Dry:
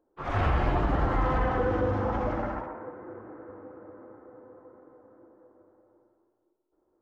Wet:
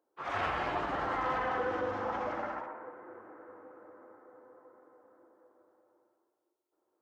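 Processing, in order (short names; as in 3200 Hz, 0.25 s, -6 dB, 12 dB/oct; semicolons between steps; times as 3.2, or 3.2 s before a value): HPF 900 Hz 6 dB/oct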